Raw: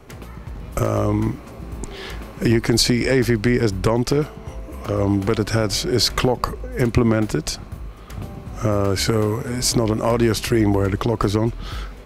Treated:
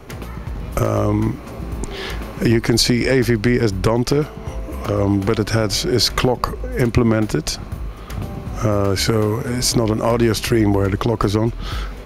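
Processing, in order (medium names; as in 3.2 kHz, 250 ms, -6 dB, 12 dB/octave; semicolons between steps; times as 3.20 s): in parallel at 0 dB: compression, threshold -28 dBFS, peak gain reduction 15.5 dB; on the sum: band-stop 7.8 kHz, Q 9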